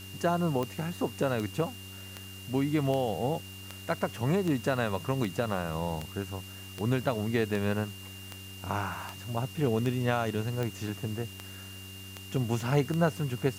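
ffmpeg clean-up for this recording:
-af "adeclick=t=4,bandreject=f=96.3:t=h:w=4,bandreject=f=192.6:t=h:w=4,bandreject=f=288.9:t=h:w=4,bandreject=f=385.2:t=h:w=4,bandreject=f=2.8k:w=30,afwtdn=0.0032"

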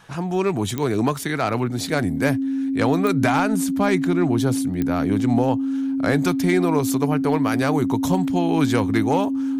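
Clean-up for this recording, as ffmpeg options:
-af "adeclick=t=4,bandreject=f=270:w=30"

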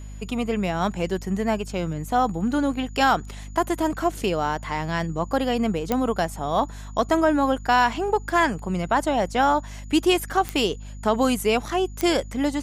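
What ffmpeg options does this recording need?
-af "adeclick=t=4,bandreject=f=50.5:t=h:w=4,bandreject=f=101:t=h:w=4,bandreject=f=151.5:t=h:w=4,bandreject=f=202:t=h:w=4,bandreject=f=252.5:t=h:w=4,bandreject=f=6.9k:w=30"

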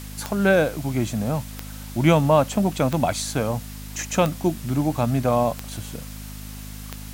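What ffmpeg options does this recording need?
-af "adeclick=t=4,bandreject=f=51.6:t=h:w=4,bandreject=f=103.2:t=h:w=4,bandreject=f=154.8:t=h:w=4,bandreject=f=206.4:t=h:w=4,bandreject=f=258:t=h:w=4,afwtdn=0.0079"

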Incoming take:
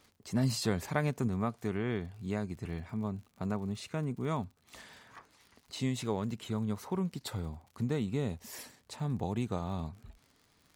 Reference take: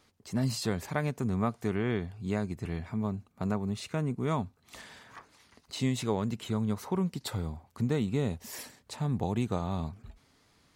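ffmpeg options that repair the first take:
-af "adeclick=t=4,asetnsamples=n=441:p=0,asendcmd='1.28 volume volume 3.5dB',volume=0dB"

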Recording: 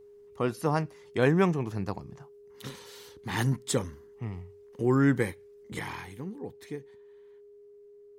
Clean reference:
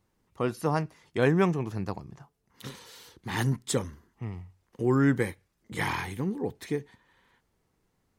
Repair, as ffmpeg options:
-af "bandreject=f=410:w=30,asetnsamples=n=441:p=0,asendcmd='5.79 volume volume 8dB',volume=0dB"

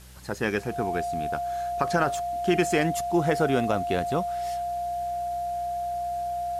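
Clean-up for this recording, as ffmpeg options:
-af "adeclick=t=4,bandreject=f=62.6:t=h:w=4,bandreject=f=125.2:t=h:w=4,bandreject=f=187.8:t=h:w=4,bandreject=f=700:w=30,afwtdn=0.0025"

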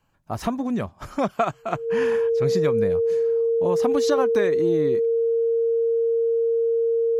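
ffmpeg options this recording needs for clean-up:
-af "bandreject=f=460:w=30"

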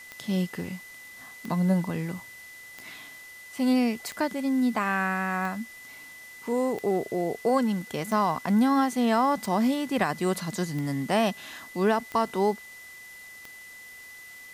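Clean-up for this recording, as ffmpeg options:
-af "adeclick=t=4,bandreject=f=2k:w=30,afwtdn=0.0028"

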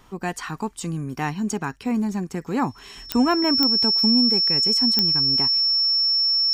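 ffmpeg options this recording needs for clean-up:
-af "adeclick=t=4,bandreject=f=5.4k:w=30"

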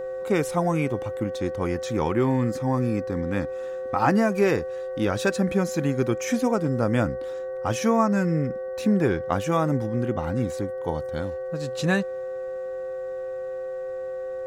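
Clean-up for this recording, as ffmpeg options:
-af "bandreject=f=377.4:t=h:w=4,bandreject=f=754.8:t=h:w=4,bandreject=f=1.1322k:t=h:w=4,bandreject=f=1.5096k:t=h:w=4,bandreject=f=1.887k:t=h:w=4,bandreject=f=520:w=30"

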